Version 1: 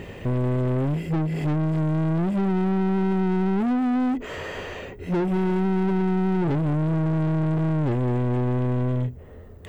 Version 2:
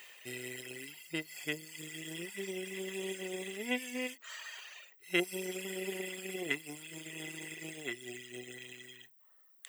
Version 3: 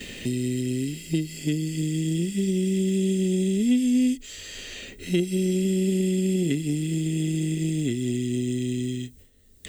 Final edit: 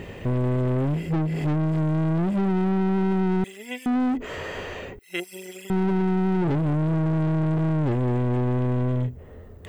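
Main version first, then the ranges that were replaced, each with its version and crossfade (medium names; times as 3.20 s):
1
3.44–3.86 s: from 2
4.99–5.70 s: from 2
not used: 3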